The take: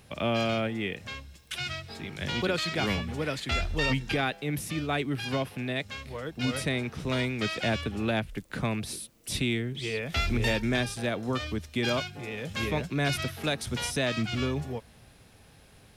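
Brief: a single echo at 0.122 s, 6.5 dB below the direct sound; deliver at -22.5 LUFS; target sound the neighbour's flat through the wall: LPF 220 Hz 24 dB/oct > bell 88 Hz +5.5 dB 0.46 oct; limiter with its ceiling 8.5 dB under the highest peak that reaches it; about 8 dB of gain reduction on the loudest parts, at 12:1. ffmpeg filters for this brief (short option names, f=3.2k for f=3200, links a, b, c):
-af "acompressor=threshold=-31dB:ratio=12,alimiter=level_in=5dB:limit=-24dB:level=0:latency=1,volume=-5dB,lowpass=f=220:w=0.5412,lowpass=f=220:w=1.3066,equalizer=f=88:t=o:w=0.46:g=5.5,aecho=1:1:122:0.473,volume=20dB"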